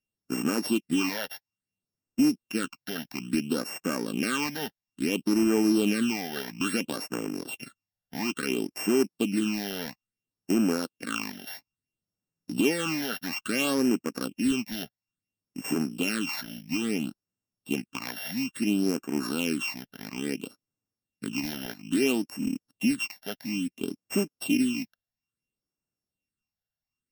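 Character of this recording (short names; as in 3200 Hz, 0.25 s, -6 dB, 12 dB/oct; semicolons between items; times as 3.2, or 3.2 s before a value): a buzz of ramps at a fixed pitch in blocks of 16 samples; phasing stages 8, 0.59 Hz, lowest notch 320–3900 Hz; Vorbis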